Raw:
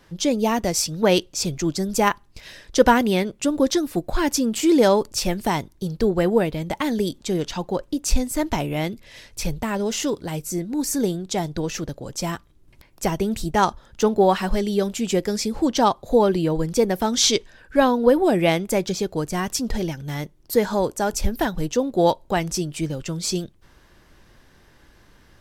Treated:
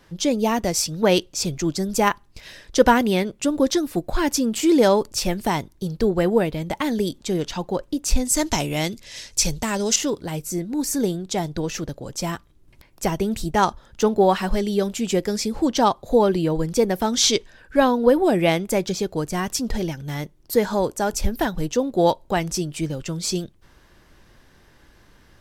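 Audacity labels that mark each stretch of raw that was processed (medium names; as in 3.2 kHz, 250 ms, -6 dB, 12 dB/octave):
8.250000	9.960000	peaking EQ 6.5 kHz +13.5 dB 1.6 oct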